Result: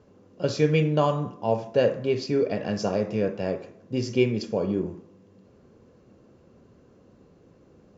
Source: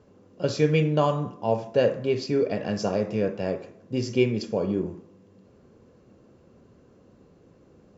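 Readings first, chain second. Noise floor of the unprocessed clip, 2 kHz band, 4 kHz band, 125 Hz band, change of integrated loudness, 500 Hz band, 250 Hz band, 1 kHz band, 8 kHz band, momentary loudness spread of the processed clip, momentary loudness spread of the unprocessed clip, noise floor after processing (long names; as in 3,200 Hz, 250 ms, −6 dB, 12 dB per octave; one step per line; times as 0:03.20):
−57 dBFS, 0.0 dB, 0.0 dB, 0.0 dB, 0.0 dB, 0.0 dB, 0.0 dB, 0.0 dB, can't be measured, 9 LU, 9 LU, −57 dBFS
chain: downsampling to 16,000 Hz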